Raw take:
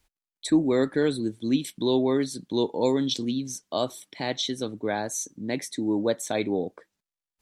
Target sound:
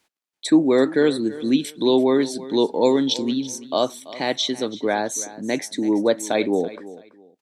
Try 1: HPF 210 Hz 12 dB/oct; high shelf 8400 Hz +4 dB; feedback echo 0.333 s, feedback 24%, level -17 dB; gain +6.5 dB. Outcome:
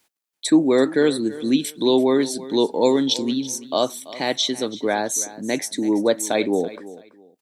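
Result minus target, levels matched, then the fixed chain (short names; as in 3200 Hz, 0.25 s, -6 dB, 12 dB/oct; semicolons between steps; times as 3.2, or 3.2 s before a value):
8000 Hz band +4.0 dB
HPF 210 Hz 12 dB/oct; high shelf 8400 Hz -7 dB; feedback echo 0.333 s, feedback 24%, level -17 dB; gain +6.5 dB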